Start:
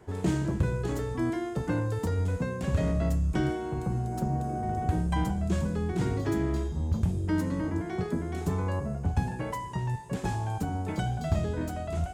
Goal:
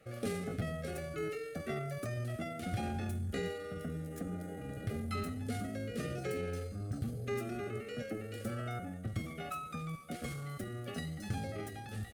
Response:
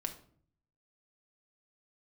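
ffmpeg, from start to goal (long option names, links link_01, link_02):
-af "asetrate=57191,aresample=44100,atempo=0.771105,asuperstop=centerf=970:order=12:qfactor=2.9,tiltshelf=frequency=730:gain=-3.5,volume=-7.5dB"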